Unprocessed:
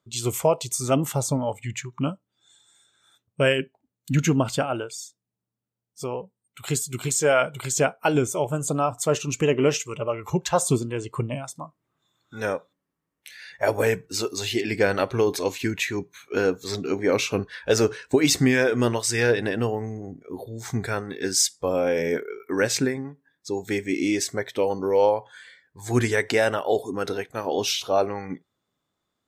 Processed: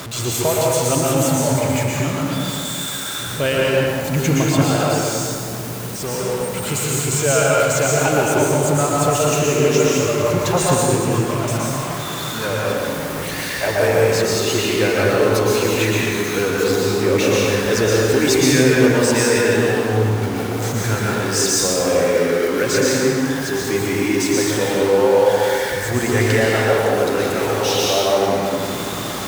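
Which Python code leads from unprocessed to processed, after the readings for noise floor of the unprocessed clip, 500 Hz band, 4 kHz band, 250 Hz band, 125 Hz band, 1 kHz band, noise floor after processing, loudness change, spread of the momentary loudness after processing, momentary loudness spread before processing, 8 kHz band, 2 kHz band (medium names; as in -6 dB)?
-83 dBFS, +7.5 dB, +8.0 dB, +7.0 dB, +8.5 dB, +8.0 dB, -26 dBFS, +7.0 dB, 7 LU, 13 LU, +8.0 dB, +7.5 dB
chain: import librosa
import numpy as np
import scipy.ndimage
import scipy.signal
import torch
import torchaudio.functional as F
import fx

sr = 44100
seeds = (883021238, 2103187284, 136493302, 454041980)

y = x + 0.5 * 10.0 ** (-23.5 / 20.0) * np.sign(x)
y = scipy.signal.sosfilt(scipy.signal.butter(2, 41.0, 'highpass', fs=sr, output='sos'), y)
y = fx.rev_plate(y, sr, seeds[0], rt60_s=2.4, hf_ratio=0.6, predelay_ms=105, drr_db=-5.0)
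y = y * 10.0 ** (-2.0 / 20.0)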